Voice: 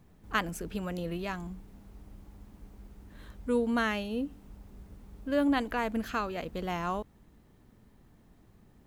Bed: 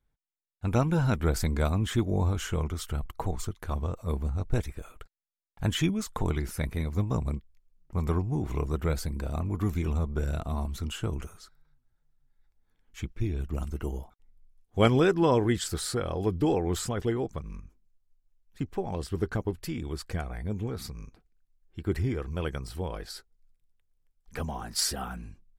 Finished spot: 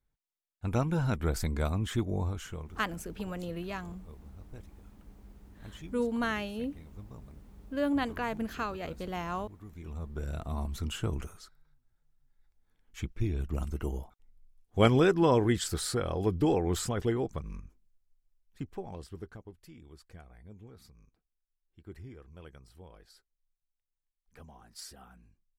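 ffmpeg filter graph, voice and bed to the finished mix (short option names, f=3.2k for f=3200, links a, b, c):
-filter_complex "[0:a]adelay=2450,volume=-2.5dB[a];[1:a]volume=15.5dB,afade=t=out:st=2.06:d=0.77:silence=0.149624,afade=t=in:st=9.71:d=1.16:silence=0.105925,afade=t=out:st=17.72:d=1.67:silence=0.141254[b];[a][b]amix=inputs=2:normalize=0"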